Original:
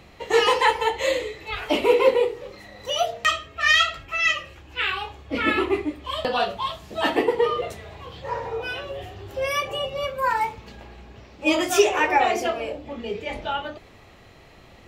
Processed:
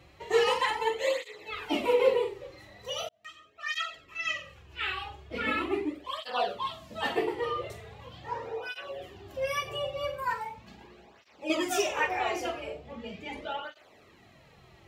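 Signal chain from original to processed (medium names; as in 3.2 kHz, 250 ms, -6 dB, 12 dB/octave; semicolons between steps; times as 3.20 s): 10.33–11.50 s: compression 2:1, threshold -32 dBFS, peak gain reduction 9 dB; flutter echo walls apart 7.7 m, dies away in 0.32 s; 3.09–4.78 s: fade in; cancelling through-zero flanger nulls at 0.4 Hz, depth 4.8 ms; trim -5 dB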